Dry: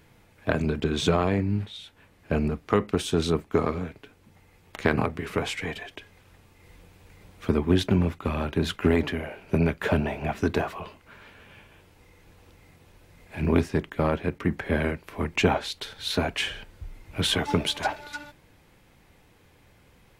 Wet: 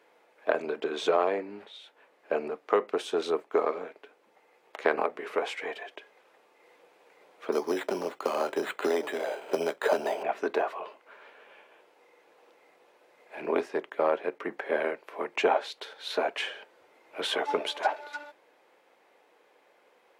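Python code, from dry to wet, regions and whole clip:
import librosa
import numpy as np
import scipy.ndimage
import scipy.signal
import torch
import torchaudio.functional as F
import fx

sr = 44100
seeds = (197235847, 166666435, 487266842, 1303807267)

y = fx.chain(x, sr, fx.high_shelf(hz=4800.0, db=-6.0),
    fx.resample_bad(factor=8, down='none', up='hold'),
    fx.band_squash(depth_pct=70), at=(7.52, 10.23))
y = scipy.signal.sosfilt(scipy.signal.butter(4, 470.0, 'highpass', fs=sr, output='sos'), y)
y = fx.tilt_eq(y, sr, slope=-3.5)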